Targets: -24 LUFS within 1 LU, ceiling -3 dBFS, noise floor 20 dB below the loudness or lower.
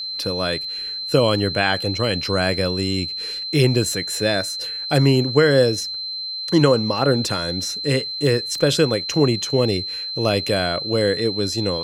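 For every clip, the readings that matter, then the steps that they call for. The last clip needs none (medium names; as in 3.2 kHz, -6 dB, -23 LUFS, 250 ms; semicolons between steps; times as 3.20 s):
tick rate 24 per s; steady tone 4.1 kHz; tone level -26 dBFS; loudness -20.0 LUFS; peak level -2.0 dBFS; loudness target -24.0 LUFS
-> de-click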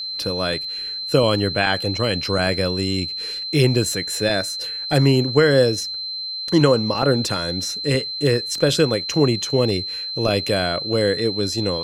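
tick rate 0.59 per s; steady tone 4.1 kHz; tone level -26 dBFS
-> band-stop 4.1 kHz, Q 30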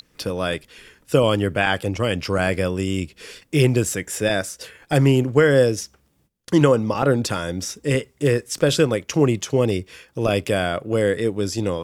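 steady tone not found; loudness -21.0 LUFS; peak level -2.5 dBFS; loudness target -24.0 LUFS
-> trim -3 dB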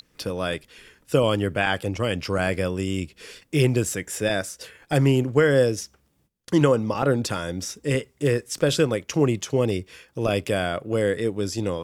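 loudness -24.0 LUFS; peak level -5.5 dBFS; noise floor -66 dBFS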